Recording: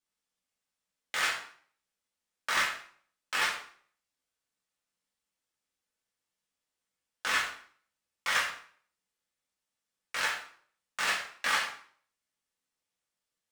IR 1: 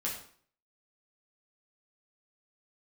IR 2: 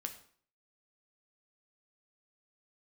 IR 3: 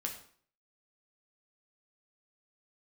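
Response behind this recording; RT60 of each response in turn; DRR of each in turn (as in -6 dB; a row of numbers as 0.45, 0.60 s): 1; 0.50, 0.50, 0.50 s; -4.5, 5.0, 1.0 dB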